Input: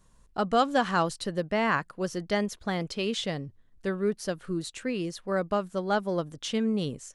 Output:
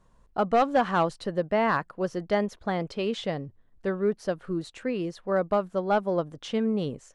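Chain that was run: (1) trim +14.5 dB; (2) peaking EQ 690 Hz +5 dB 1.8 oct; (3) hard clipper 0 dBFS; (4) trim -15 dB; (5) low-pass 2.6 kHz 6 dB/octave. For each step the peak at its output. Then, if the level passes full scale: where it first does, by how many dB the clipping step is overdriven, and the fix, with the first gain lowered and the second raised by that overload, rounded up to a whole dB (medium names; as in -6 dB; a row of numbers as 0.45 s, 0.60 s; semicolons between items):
+3.5 dBFS, +6.0 dBFS, 0.0 dBFS, -15.0 dBFS, -15.0 dBFS; step 1, 6.0 dB; step 1 +8.5 dB, step 4 -9 dB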